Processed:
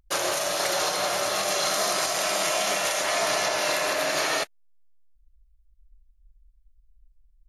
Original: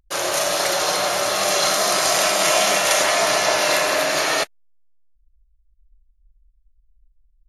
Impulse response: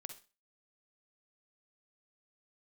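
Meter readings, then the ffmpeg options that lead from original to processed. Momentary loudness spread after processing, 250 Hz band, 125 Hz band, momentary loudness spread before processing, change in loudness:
2 LU, -6.0 dB, -6.0 dB, 4 LU, -6.5 dB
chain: -af "alimiter=limit=-15dB:level=0:latency=1:release=438"

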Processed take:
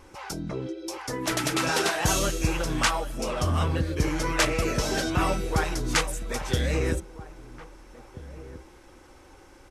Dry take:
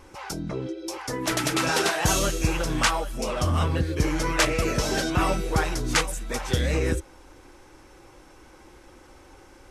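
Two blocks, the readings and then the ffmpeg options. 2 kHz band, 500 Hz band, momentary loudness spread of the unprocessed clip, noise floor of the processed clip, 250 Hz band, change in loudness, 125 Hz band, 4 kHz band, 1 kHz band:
-1.5 dB, -1.5 dB, 10 LU, -52 dBFS, -1.5 dB, -1.5 dB, -1.5 dB, -1.5 dB, -1.5 dB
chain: -filter_complex "[0:a]asplit=2[a][b];[b]adelay=1633,volume=-16dB,highshelf=f=4k:g=-36.7[c];[a][c]amix=inputs=2:normalize=0,volume=-1.5dB"

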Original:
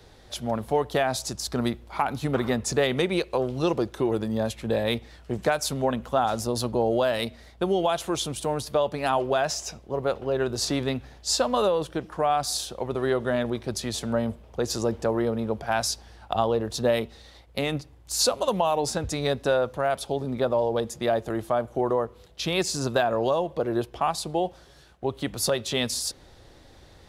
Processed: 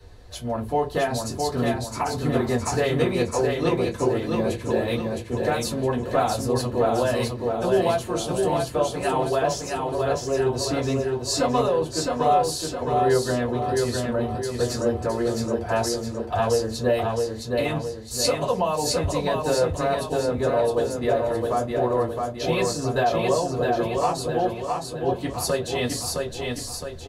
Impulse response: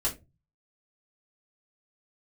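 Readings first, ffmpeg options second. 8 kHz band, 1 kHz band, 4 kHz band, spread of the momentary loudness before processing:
+0.5 dB, +3.0 dB, -0.5 dB, 7 LU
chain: -filter_complex "[0:a]aecho=1:1:664|1328|1992|2656|3320|3984:0.668|0.321|0.154|0.0739|0.0355|0.017[a];[1:a]atrim=start_sample=2205,asetrate=66150,aresample=44100[b];[a][b]afir=irnorm=-1:irlink=0,volume=-3.5dB"

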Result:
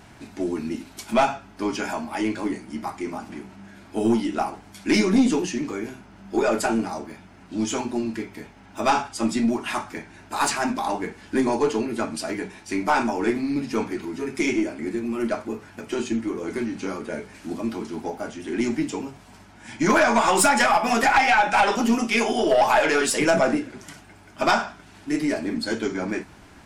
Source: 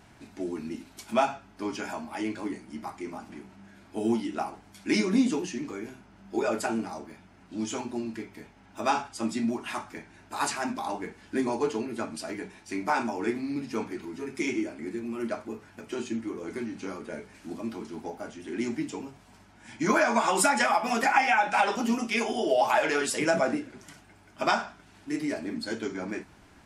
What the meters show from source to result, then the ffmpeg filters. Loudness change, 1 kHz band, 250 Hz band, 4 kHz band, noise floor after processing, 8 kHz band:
+6.0 dB, +5.5 dB, +6.5 dB, +6.5 dB, -49 dBFS, +6.0 dB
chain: -af "aeval=exprs='(tanh(7.94*val(0)+0.2)-tanh(0.2))/7.94':c=same,volume=7.5dB"

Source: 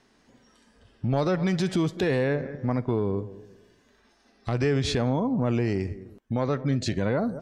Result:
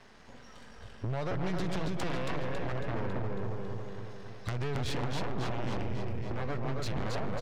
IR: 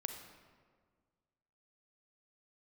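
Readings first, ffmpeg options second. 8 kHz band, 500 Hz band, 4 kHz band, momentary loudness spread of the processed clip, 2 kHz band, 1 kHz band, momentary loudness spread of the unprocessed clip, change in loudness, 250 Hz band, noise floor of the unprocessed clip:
-7.0 dB, -9.5 dB, -6.0 dB, 12 LU, -5.5 dB, -3.5 dB, 8 LU, -9.5 dB, -11.0 dB, -63 dBFS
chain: -filter_complex "[0:a]aeval=exprs='if(lt(val(0),0),0.251*val(0),val(0))':c=same,lowpass=f=3.1k:p=1,equalizer=f=290:t=o:w=0.95:g=-9,acompressor=threshold=-38dB:ratio=6,asplit=2[a][b];[b]aecho=0:1:275|550|825|1100|1375|1650|1925|2200:0.631|0.36|0.205|0.117|0.0666|0.038|0.0216|0.0123[c];[a][c]amix=inputs=2:normalize=0,aeval=exprs='0.0447*sin(PI/2*2.51*val(0)/0.0447)':c=same"

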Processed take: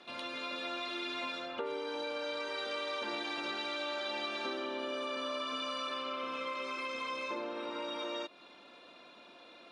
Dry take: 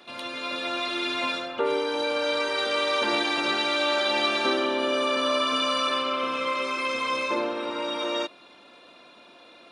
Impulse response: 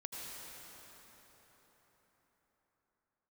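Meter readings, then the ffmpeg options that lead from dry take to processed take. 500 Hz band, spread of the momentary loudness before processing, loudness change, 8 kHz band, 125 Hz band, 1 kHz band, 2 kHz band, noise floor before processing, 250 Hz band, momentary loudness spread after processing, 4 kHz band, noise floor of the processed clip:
-12.0 dB, 6 LU, -12.0 dB, -14.0 dB, n/a, -12.0 dB, -12.0 dB, -52 dBFS, -12.0 dB, 18 LU, -12.0 dB, -56 dBFS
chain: -af "equalizer=f=120:w=4.8:g=-6,acompressor=threshold=-33dB:ratio=3,lowpass=7.7k,volume=-4.5dB"

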